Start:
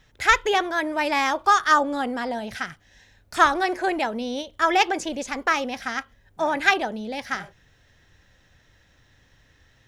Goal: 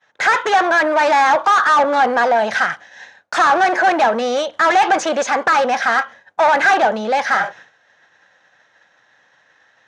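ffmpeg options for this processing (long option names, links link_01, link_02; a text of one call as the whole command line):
ffmpeg -i in.wav -filter_complex "[0:a]asplit=2[link_01][link_02];[link_02]highpass=frequency=720:poles=1,volume=34dB,asoftclip=type=tanh:threshold=-1dB[link_03];[link_01][link_03]amix=inputs=2:normalize=0,lowpass=frequency=1000:poles=1,volume=-6dB,equalizer=frequency=900:width=2.2:gain=10,agate=range=-33dB:threshold=-29dB:ratio=3:detection=peak,highpass=220,equalizer=frequency=270:width_type=q:width=4:gain=-7,equalizer=frequency=390:width_type=q:width=4:gain=-7,equalizer=frequency=930:width_type=q:width=4:gain=-7,equalizer=frequency=1600:width_type=q:width=4:gain=6,equalizer=frequency=3900:width_type=q:width=4:gain=3,equalizer=frequency=6300:width_type=q:width=4:gain=7,lowpass=frequency=9900:width=0.5412,lowpass=frequency=9900:width=1.3066,volume=-4.5dB" out.wav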